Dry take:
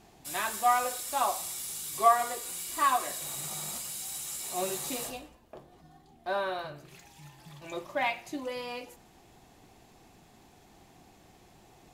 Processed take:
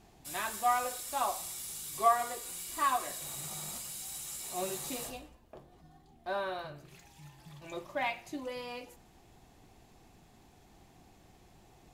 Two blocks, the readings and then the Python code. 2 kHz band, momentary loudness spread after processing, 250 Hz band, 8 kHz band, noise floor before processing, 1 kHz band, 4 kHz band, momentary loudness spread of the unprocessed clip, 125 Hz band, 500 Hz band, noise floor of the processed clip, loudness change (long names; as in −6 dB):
−4.0 dB, 18 LU, −3.0 dB, −4.0 dB, −59 dBFS, −4.0 dB, −4.0 dB, 16 LU, −1.0 dB, −3.5 dB, −61 dBFS, −4.0 dB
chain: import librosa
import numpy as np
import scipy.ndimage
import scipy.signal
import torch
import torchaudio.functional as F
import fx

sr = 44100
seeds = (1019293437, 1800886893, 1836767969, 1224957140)

y = fx.low_shelf(x, sr, hz=110.0, db=7.5)
y = y * 10.0 ** (-4.0 / 20.0)